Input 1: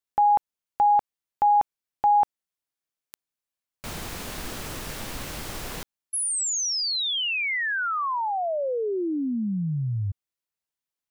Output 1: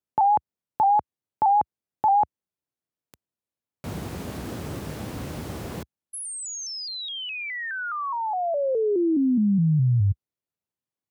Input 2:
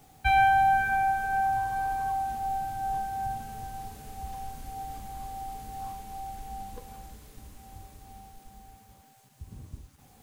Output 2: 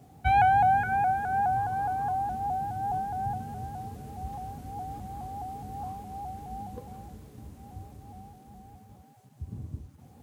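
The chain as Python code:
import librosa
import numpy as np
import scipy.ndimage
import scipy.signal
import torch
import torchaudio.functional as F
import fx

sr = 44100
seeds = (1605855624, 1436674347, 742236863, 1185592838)

y = scipy.signal.sosfilt(scipy.signal.butter(4, 70.0, 'highpass', fs=sr, output='sos'), x)
y = fx.tilt_shelf(y, sr, db=7.5, hz=810.0)
y = fx.vibrato_shape(y, sr, shape='saw_up', rate_hz=4.8, depth_cents=100.0)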